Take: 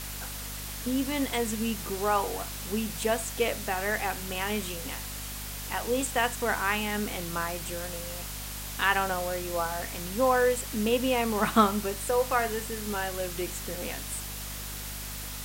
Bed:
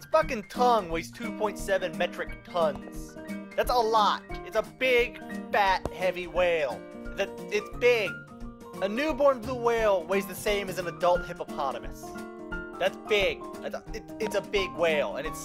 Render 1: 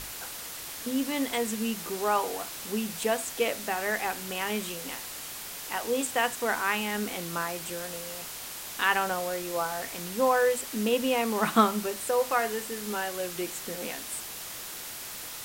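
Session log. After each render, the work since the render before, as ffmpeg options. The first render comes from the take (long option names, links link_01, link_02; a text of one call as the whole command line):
ffmpeg -i in.wav -af "bandreject=frequency=50:width_type=h:width=6,bandreject=frequency=100:width_type=h:width=6,bandreject=frequency=150:width_type=h:width=6,bandreject=frequency=200:width_type=h:width=6,bandreject=frequency=250:width_type=h:width=6" out.wav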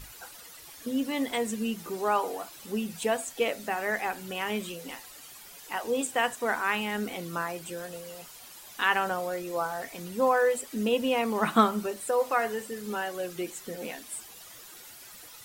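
ffmpeg -i in.wav -af "afftdn=noise_reduction=12:noise_floor=-40" out.wav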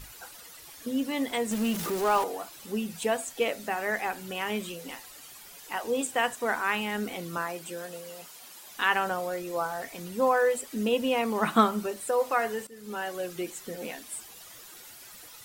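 ffmpeg -i in.wav -filter_complex "[0:a]asettb=1/sr,asplit=3[link_01][link_02][link_03];[link_01]atrim=end=1.514[link_04];[link_02]atrim=start=1.51:end=2.24,asetpts=PTS-STARTPTS,afade=type=in:duration=0.004:curve=qsin,afade=type=out:start_time=0.726:duration=0.004:curve=qsin,aeval=exprs='val(0)+0.5*0.0316*sgn(val(0))':channel_layout=same[link_05];[link_03]atrim=start=2.236[link_06];[link_04][link_05]acrossfade=duration=0.004:curve1=hsin:curve2=qsin[link_07];[link_07][link_06]acrossfade=duration=0.004:curve1=qsin:curve2=hsin,asettb=1/sr,asplit=3[link_08][link_09][link_10];[link_08]atrim=end=7.374[link_11];[link_09]atrim=start=7.37:end=8.74,asetpts=PTS-STARTPTS,afade=type=in:duration=0.004:curve=qsin,afade=type=out:start_time=1.366:duration=0.004:curve=qsin,highpass=160[link_12];[link_10]atrim=start=8.736[link_13];[link_11][link_12]acrossfade=duration=0.004:curve1=hsin:curve2=qsin[link_14];[link_14][link_13]acrossfade=duration=0.004:curve1=qsin:curve2=hsin,asplit=2[link_15][link_16];[link_15]atrim=end=12.67,asetpts=PTS-STARTPTS,afade=type=out:start_time=12.666:duration=0.004:curve=hsin:silence=0.158489[link_17];[link_16]atrim=start=12.67,asetpts=PTS-STARTPTS,afade=type=in:duration=0.42:silence=0.158489[link_18];[link_17][link_18]concat=n=2:v=0:a=1" out.wav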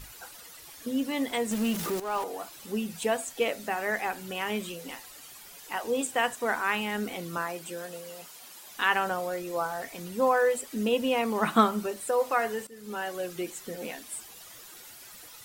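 ffmpeg -i in.wav -filter_complex "[0:a]asplit=2[link_01][link_02];[link_01]atrim=end=2,asetpts=PTS-STARTPTS,afade=type=out:start_time=1.996:duration=0.004:curve=hsin:silence=0.237137[link_03];[link_02]atrim=start=2,asetpts=PTS-STARTPTS,afade=type=in:duration=0.44:silence=0.237137[link_04];[link_03][link_04]concat=n=2:v=0:a=1" out.wav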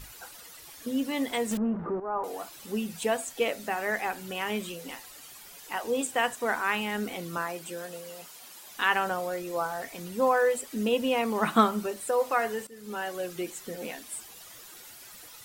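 ffmpeg -i in.wav -filter_complex "[0:a]asettb=1/sr,asplit=3[link_01][link_02][link_03];[link_01]atrim=end=1.574[link_04];[link_02]atrim=start=1.57:end=2.24,asetpts=PTS-STARTPTS,afade=type=in:duration=0.004:curve=qsin,afade=type=out:start_time=0.666:duration=0.004:curve=qsin,lowpass=frequency=1300:width=0.5412,lowpass=frequency=1300:width=1.3066[link_05];[link_03]atrim=start=2.236[link_06];[link_04][link_05]acrossfade=duration=0.004:curve1=hsin:curve2=qsin[link_07];[link_07][link_06]acrossfade=duration=0.004:curve1=qsin:curve2=hsin" out.wav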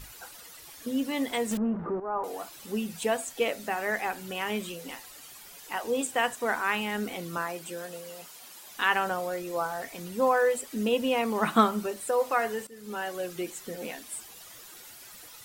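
ffmpeg -i in.wav -af anull out.wav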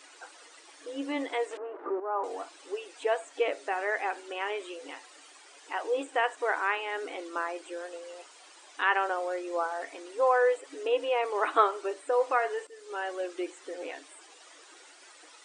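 ffmpeg -i in.wav -filter_complex "[0:a]acrossover=split=2800[link_01][link_02];[link_02]acompressor=threshold=-50dB:ratio=4:attack=1:release=60[link_03];[link_01][link_03]amix=inputs=2:normalize=0,afftfilt=real='re*between(b*sr/4096,270,9500)':imag='im*between(b*sr/4096,270,9500)':win_size=4096:overlap=0.75" out.wav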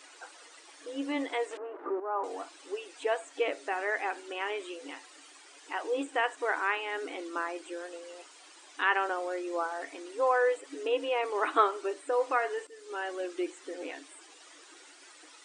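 ffmpeg -i in.wav -af "asubboost=boost=4.5:cutoff=230" out.wav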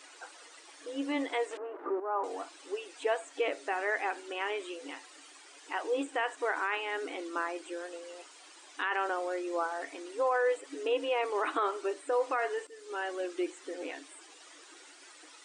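ffmpeg -i in.wav -af "alimiter=limit=-20.5dB:level=0:latency=1:release=28" out.wav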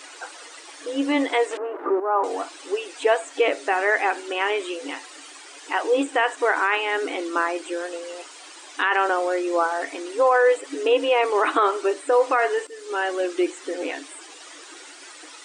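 ffmpeg -i in.wav -af "volume=11dB" out.wav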